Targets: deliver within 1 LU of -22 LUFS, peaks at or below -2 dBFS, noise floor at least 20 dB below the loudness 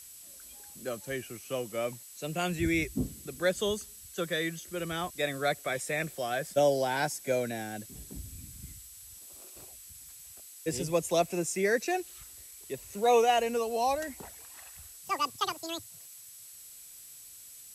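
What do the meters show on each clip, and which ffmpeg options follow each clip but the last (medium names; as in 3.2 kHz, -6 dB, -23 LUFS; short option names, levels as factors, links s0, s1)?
steady tone 7.8 kHz; tone level -53 dBFS; noise floor -50 dBFS; noise floor target -51 dBFS; loudness -31.0 LUFS; peak level -14.0 dBFS; loudness target -22.0 LUFS
-> -af "bandreject=f=7800:w=30"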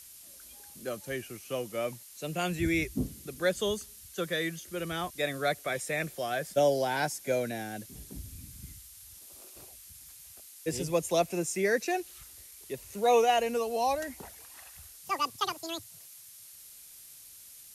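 steady tone not found; noise floor -51 dBFS; noise floor target -52 dBFS
-> -af "afftdn=nr=6:nf=-51"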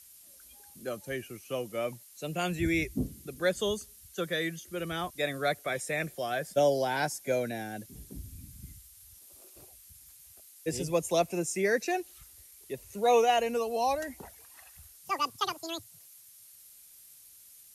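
noise floor -55 dBFS; loudness -31.5 LUFS; peak level -14.0 dBFS; loudness target -22.0 LUFS
-> -af "volume=2.99"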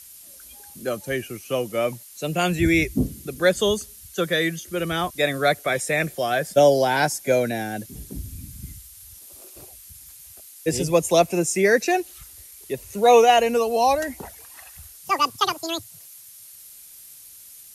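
loudness -22.0 LUFS; peak level -4.5 dBFS; noise floor -45 dBFS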